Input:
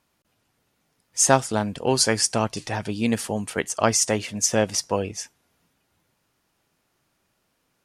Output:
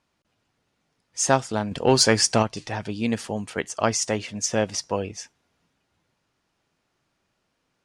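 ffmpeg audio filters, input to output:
-filter_complex "[0:a]lowpass=6.8k,asettb=1/sr,asplit=3[a][b][c];[a]atrim=end=1.714[d];[b]atrim=start=1.71:end=2.43,asetpts=PTS-STARTPTS,afade=t=in:d=0.004:c=qsin,afade=t=out:st=0.716:d=0.004:c=qsin,acontrast=57[e];[c]atrim=start=2.426[f];[d][e]acrossfade=d=0.004:c1=hsin:c2=qsin[g];[g][f]acrossfade=d=0.004:c1=qsin:c2=hsin,volume=-2dB"

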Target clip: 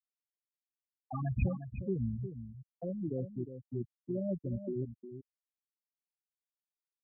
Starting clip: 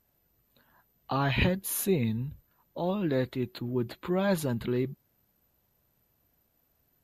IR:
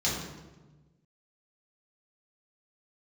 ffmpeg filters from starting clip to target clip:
-filter_complex "[0:a]aeval=exprs='val(0)+0.00891*(sin(2*PI*60*n/s)+sin(2*PI*2*60*n/s)/2+sin(2*PI*3*60*n/s)/3+sin(2*PI*4*60*n/s)/4+sin(2*PI*5*60*n/s)/5)':c=same,afftfilt=real='re*gte(hypot(re,im),0.224)':imag='im*gte(hypot(re,im),0.224)':win_size=1024:overlap=0.75,acrossover=split=120[a][b];[b]acompressor=threshold=-48dB:ratio=1.5[c];[a][c]amix=inputs=2:normalize=0,asplit=2[d][e];[e]aecho=0:1:358:0.299[f];[d][f]amix=inputs=2:normalize=0"

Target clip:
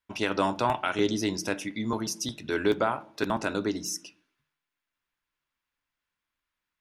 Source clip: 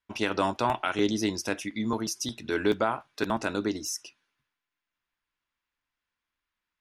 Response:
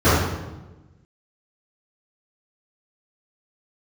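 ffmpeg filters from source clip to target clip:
-filter_complex "[0:a]asplit=2[a][b];[1:a]atrim=start_sample=2205,asetrate=88200,aresample=44100[c];[b][c]afir=irnorm=-1:irlink=0,volume=-38.5dB[d];[a][d]amix=inputs=2:normalize=0"

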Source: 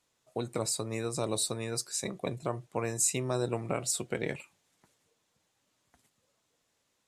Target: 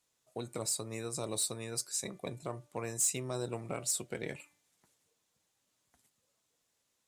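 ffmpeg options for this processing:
-filter_complex "[0:a]highshelf=f=5.5k:g=8,bandreject=f=293.9:t=h:w=4,bandreject=f=587.8:t=h:w=4,bandreject=f=881.7:t=h:w=4,bandreject=f=1.1756k:t=h:w=4,bandreject=f=1.4695k:t=h:w=4,bandreject=f=1.7634k:t=h:w=4,bandreject=f=2.0573k:t=h:w=4,bandreject=f=2.3512k:t=h:w=4,asplit=2[a][b];[b]aeval=exprs='0.0794*(abs(mod(val(0)/0.0794+3,4)-2)-1)':c=same,volume=-9.5dB[c];[a][c]amix=inputs=2:normalize=0,volume=-8.5dB"

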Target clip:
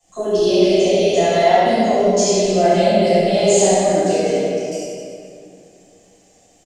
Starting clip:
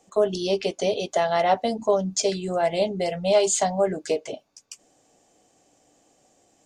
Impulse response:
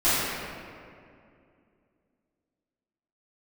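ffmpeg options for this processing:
-filter_complex "[0:a]equalizer=f=1.1k:w=1.2:g=-10,acompressor=threshold=-23dB:ratio=6,acrossover=split=190|540|3400[a][b][c][d];[b]aeval=exprs='val(0)*gte(abs(val(0)),0.00178)':c=same[e];[a][e][c][d]amix=inputs=4:normalize=0,aecho=1:1:70|154|254.8|375.8|520.9:0.631|0.398|0.251|0.158|0.1[f];[1:a]atrim=start_sample=2205[g];[f][g]afir=irnorm=-1:irlink=0,volume=-6.5dB"

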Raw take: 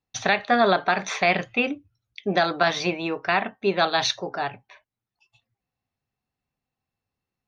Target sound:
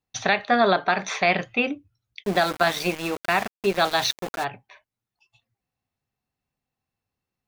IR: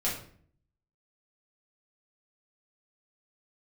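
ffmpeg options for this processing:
-filter_complex "[0:a]asplit=3[a][b][c];[a]afade=t=out:st=2.22:d=0.02[d];[b]aeval=exprs='val(0)*gte(abs(val(0)),0.0335)':c=same,afade=t=in:st=2.22:d=0.02,afade=t=out:st=4.43:d=0.02[e];[c]afade=t=in:st=4.43:d=0.02[f];[d][e][f]amix=inputs=3:normalize=0"

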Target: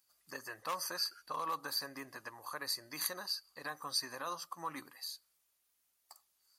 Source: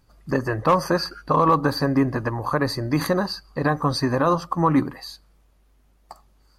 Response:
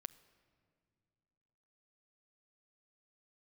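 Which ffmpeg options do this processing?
-af "aderivative,volume=-2.5dB"

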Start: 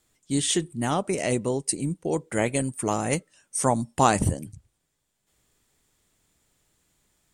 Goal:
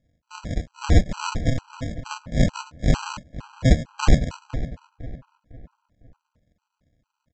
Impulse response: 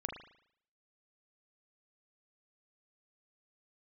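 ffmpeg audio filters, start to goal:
-filter_complex "[0:a]asplit=2[a][b];[b]aderivative[c];[1:a]atrim=start_sample=2205[d];[c][d]afir=irnorm=-1:irlink=0,volume=-8dB[e];[a][e]amix=inputs=2:normalize=0,apsyclip=19dB,asplit=3[f][g][h];[f]bandpass=f=730:t=q:w=8,volume=0dB[i];[g]bandpass=f=1.09k:t=q:w=8,volume=-6dB[j];[h]bandpass=f=2.44k:t=q:w=8,volume=-9dB[k];[i][j][k]amix=inputs=3:normalize=0,equalizer=f=5k:w=1:g=-4,aresample=16000,acrusher=samples=41:mix=1:aa=0.000001,aresample=44100,asplit=2[l][m];[m]adelay=504,lowpass=f=2.4k:p=1,volume=-14dB,asplit=2[n][o];[o]adelay=504,lowpass=f=2.4k:p=1,volume=0.39,asplit=2[p][q];[q]adelay=504,lowpass=f=2.4k:p=1,volume=0.39,asplit=2[r][s];[s]adelay=504,lowpass=f=2.4k:p=1,volume=0.39[t];[l][n][p][r][t]amix=inputs=5:normalize=0,afftfilt=real='re*gt(sin(2*PI*2.2*pts/sr)*(1-2*mod(floor(b*sr/1024/800),2)),0)':imag='im*gt(sin(2*PI*2.2*pts/sr)*(1-2*mod(floor(b*sr/1024/800),2)),0)':win_size=1024:overlap=0.75,volume=2.5dB"

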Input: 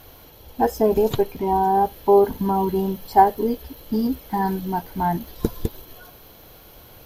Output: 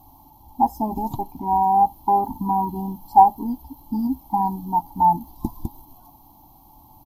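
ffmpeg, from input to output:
-af "firequalizer=gain_entry='entry(180,0);entry(290,6);entry(460,-24);entry(860,14);entry(1500,-29);entry(2200,-21);entry(4700,-9);entry(13000,-1)':delay=0.05:min_phase=1,volume=-4dB"

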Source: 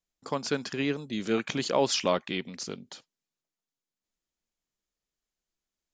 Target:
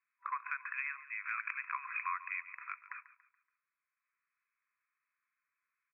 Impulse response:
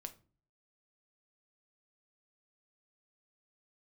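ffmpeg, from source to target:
-af "afftfilt=real='re*between(b*sr/4096,980,2600)':imag='im*between(b*sr/4096,980,2600)':win_size=4096:overlap=0.75,acompressor=threshold=-51dB:ratio=3,aecho=1:1:142|284|426|568:0.168|0.0672|0.0269|0.0107,volume=11.5dB"

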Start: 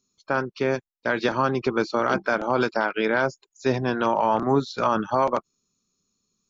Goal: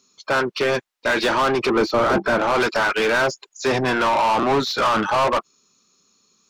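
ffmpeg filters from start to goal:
-filter_complex "[0:a]asplit=2[a][b];[b]highpass=f=720:p=1,volume=27dB,asoftclip=type=tanh:threshold=-9dB[c];[a][c]amix=inputs=2:normalize=0,lowpass=f=3.8k:p=1,volume=-6dB,asettb=1/sr,asplit=3[d][e][f];[d]atrim=end=1.704[g];[e]atrim=start=1.7:end=2.39,asetpts=PTS-STARTPTS,afade=t=in:d=0.004:c=qsin,afade=t=out:st=0.686:d=0.004:c=qsin,tiltshelf=f=970:g=5[h];[f]atrim=start=2.386[i];[g][h]acrossfade=d=0.004:c1=hsin:c2=qsin[j];[j][i]acrossfade=d=0.004:c1=qsin:c2=hsin,volume=-2.5dB"

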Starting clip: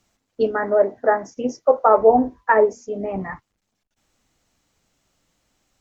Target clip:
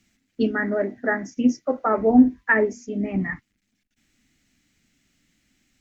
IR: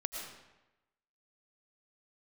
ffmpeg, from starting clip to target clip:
-af "equalizer=f=250:t=o:w=1:g=10,equalizer=f=500:t=o:w=1:g=-9,equalizer=f=1k:t=o:w=1:g=-12,equalizer=f=2k:t=o:w=1:g=9"

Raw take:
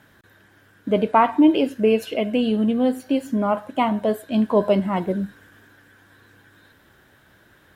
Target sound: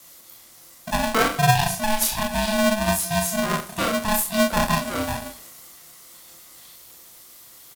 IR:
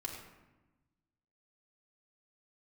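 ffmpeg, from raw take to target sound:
-filter_complex "[0:a]flanger=delay=22.5:depth=5.9:speed=2.3,aecho=1:1:38|61:0.531|0.266,afreqshift=-13,aexciter=amount=7.4:drive=9.2:freq=3.9k,asplit=2[a][b];[1:a]atrim=start_sample=2205,atrim=end_sample=6174,adelay=70[c];[b][c]afir=irnorm=-1:irlink=0,volume=-14dB[d];[a][d]amix=inputs=2:normalize=0,aeval=exprs='val(0)*sgn(sin(2*PI*430*n/s))':c=same,volume=-2dB"

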